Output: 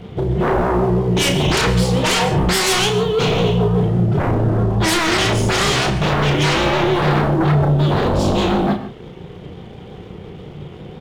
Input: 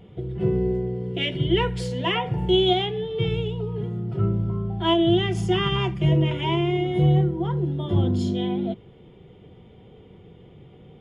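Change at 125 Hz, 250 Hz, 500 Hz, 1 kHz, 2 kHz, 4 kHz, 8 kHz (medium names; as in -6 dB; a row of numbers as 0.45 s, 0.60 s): +6.0 dB, +5.5 dB, +6.5 dB, +10.0 dB, +13.0 dB, +7.5 dB, no reading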